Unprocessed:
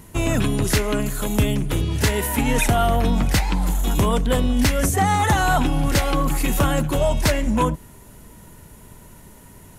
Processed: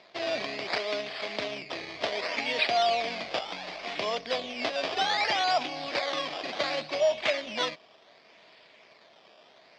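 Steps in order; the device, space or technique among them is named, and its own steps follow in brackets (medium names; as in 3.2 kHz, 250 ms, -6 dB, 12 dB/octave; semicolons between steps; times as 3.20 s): circuit-bent sampling toy (decimation with a swept rate 14×, swing 100% 0.67 Hz; cabinet simulation 600–4900 Hz, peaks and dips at 650 Hz +8 dB, 920 Hz -7 dB, 1.4 kHz -7 dB, 2.3 kHz +6 dB, 3.4 kHz +4 dB, 4.8 kHz +8 dB); trim -5.5 dB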